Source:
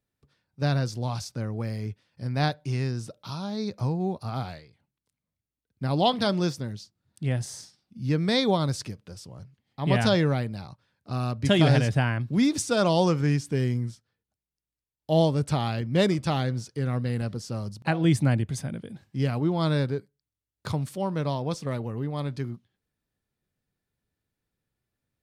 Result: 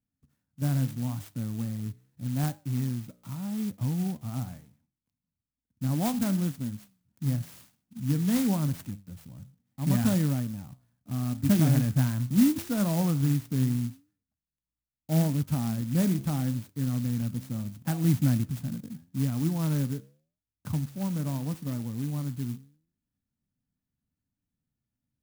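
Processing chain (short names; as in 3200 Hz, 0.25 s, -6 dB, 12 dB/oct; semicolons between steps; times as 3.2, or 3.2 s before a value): resonant low shelf 320 Hz +6.5 dB, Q 3; flange 0.78 Hz, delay 9.6 ms, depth 7.5 ms, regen +82%; clock jitter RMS 0.092 ms; gain -4.5 dB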